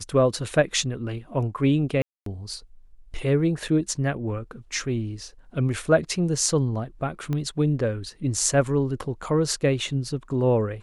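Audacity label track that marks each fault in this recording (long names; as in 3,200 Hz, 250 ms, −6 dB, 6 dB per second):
2.020000	2.260000	drop-out 243 ms
3.680000	3.680000	drop-out 3.9 ms
7.330000	7.330000	click −17 dBFS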